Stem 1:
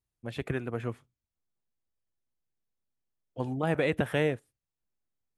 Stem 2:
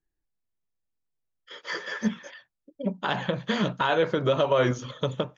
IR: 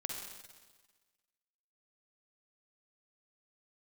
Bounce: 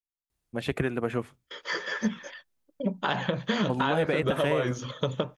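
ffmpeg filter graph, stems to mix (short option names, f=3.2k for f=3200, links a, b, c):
-filter_complex "[0:a]equalizer=f=110:w=6.2:g=-12,acontrast=89,adelay=300,volume=0dB[a];[1:a]agate=range=-28dB:threshold=-48dB:ratio=16:detection=peak,volume=1.5dB[b];[a][b]amix=inputs=2:normalize=0,acompressor=threshold=-22dB:ratio=6"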